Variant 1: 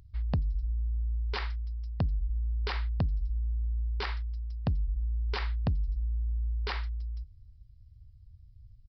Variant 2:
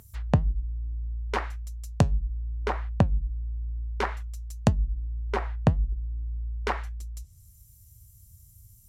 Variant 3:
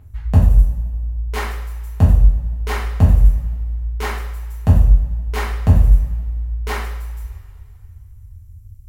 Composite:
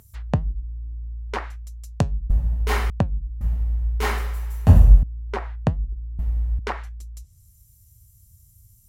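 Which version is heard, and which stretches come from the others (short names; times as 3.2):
2
2.3–2.9 from 3
3.41–5.03 from 3
6.19–6.59 from 3
not used: 1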